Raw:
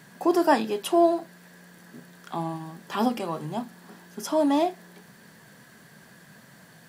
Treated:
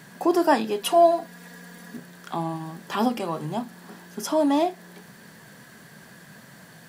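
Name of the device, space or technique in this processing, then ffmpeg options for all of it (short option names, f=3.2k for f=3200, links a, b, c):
parallel compression: -filter_complex "[0:a]asplit=2[a][b];[b]acompressor=threshold=-33dB:ratio=6,volume=-5dB[c];[a][c]amix=inputs=2:normalize=0,asettb=1/sr,asplit=3[d][e][f];[d]atrim=end=0.824[g];[e]atrim=start=0.82:end=1.97,asetpts=PTS-STARTPTS,afade=t=in:d=0.004:c=qsin,afade=t=out:st=1.146:d=0.004:c=qsin,aecho=1:1:4.2:0.89,atrim=end_sample=50715[h];[f]atrim=start=1.966[i];[g][h]acrossfade=d=0.004:c1=hsin:c2=qsin[j];[j][i]acrossfade=d=0.004:c1=qsin:c2=hsin"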